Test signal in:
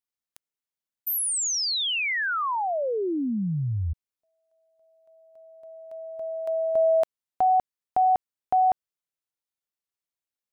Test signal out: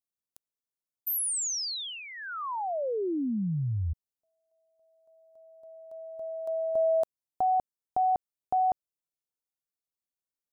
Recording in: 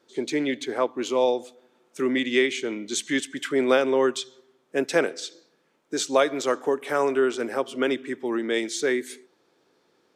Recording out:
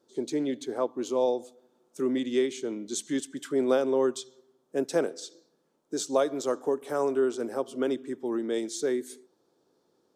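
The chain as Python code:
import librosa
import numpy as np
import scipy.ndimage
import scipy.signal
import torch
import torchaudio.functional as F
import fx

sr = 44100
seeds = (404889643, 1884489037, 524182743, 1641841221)

y = fx.peak_eq(x, sr, hz=2200.0, db=-14.5, octaves=1.4)
y = F.gain(torch.from_numpy(y), -2.5).numpy()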